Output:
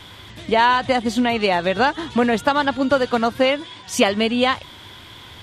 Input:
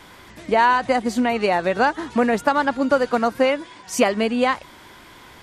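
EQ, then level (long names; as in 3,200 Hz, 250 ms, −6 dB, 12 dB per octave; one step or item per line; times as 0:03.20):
parametric band 97 Hz +12.5 dB 0.9 octaves
parametric band 3,400 Hz +11.5 dB 0.58 octaves
0.0 dB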